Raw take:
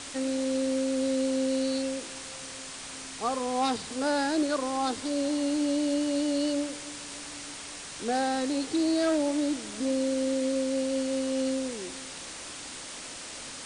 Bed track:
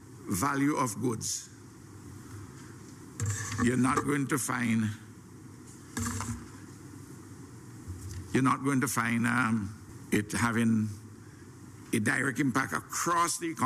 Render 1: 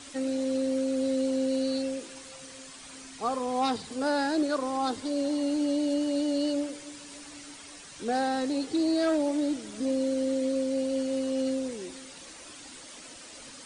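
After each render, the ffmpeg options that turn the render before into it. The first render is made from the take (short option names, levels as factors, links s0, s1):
-af "afftdn=nr=9:nf=-41"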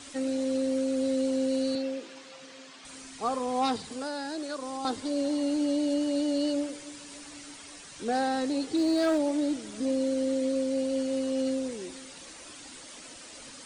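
-filter_complex "[0:a]asettb=1/sr,asplit=3[s0][s1][s2];[s0]atrim=end=1.754[s3];[s1]atrim=start=1.75:end=2.85,asetpts=PTS-STARTPTS,afade=t=in:d=0.004:c=qsin,afade=t=out:st=1.096:d=0.004:c=qsin,highpass=200,lowpass=4800[s4];[s2]atrim=start=2.846[s5];[s3][s4]acrossfade=d=0.004:c1=hsin:c2=qsin[s6];[s6][s5]acrossfade=d=0.004:c1=qsin:c2=hsin,asettb=1/sr,asplit=3[s7][s8][s9];[s7]atrim=end=3.894[s10];[s8]atrim=start=3.89:end=4.85,asetpts=PTS-STARTPTS,afade=t=in:d=0.004:c=qsin,afade=t=out:st=0.956:d=0.004:c=qsin,acrossover=split=660|2900[s11][s12][s13];[s11]acompressor=threshold=0.0141:ratio=4[s14];[s12]acompressor=threshold=0.01:ratio=4[s15];[s13]acompressor=threshold=0.00794:ratio=4[s16];[s14][s15][s16]amix=inputs=3:normalize=0[s17];[s9]atrim=start=4.846[s18];[s10][s17]acrossfade=d=0.004:c1=hsin:c2=qsin[s19];[s19][s18]acrossfade=d=0.004:c1=qsin:c2=hsin,asettb=1/sr,asplit=3[s20][s21][s22];[s20]atrim=end=8.784[s23];[s21]atrim=start=8.78:end=9.18,asetpts=PTS-STARTPTS,afade=t=in:d=0.004:c=qsin,afade=t=out:st=0.396:d=0.004:c=qsin,aeval=exprs='val(0)+0.5*0.0075*sgn(val(0))':c=same[s24];[s22]atrim=start=9.176[s25];[s23][s24]acrossfade=d=0.004:c1=hsin:c2=qsin[s26];[s26][s25]acrossfade=d=0.004:c1=qsin:c2=hsin"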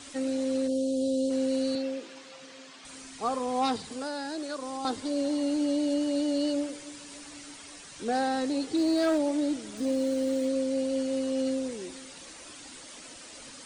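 -filter_complex "[0:a]asplit=3[s0][s1][s2];[s0]afade=t=out:st=0.67:d=0.02[s3];[s1]asuperstop=centerf=1500:order=8:qfactor=0.65,afade=t=in:st=0.67:d=0.02,afade=t=out:st=1.29:d=0.02[s4];[s2]afade=t=in:st=1.29:d=0.02[s5];[s3][s4][s5]amix=inputs=3:normalize=0,asettb=1/sr,asplit=3[s6][s7][s8];[s6]atrim=end=9.774[s9];[s7]atrim=start=9.77:end=10.48,asetpts=PTS-STARTPTS,afade=t=in:d=0.004:c=qsin,afade=t=out:st=0.706:d=0.004:c=qsin,aeval=exprs='val(0)*gte(abs(val(0)),0.00562)':c=same[s10];[s8]atrim=start=10.476[s11];[s9][s10]acrossfade=d=0.004:c1=hsin:c2=qsin[s12];[s12][s11]acrossfade=d=0.004:c1=qsin:c2=hsin"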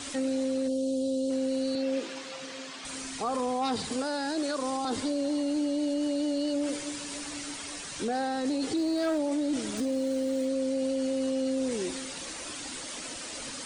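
-af "acontrast=88,alimiter=limit=0.075:level=0:latency=1:release=28"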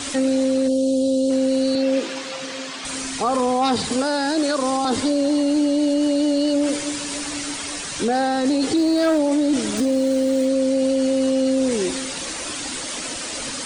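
-af "volume=3.16"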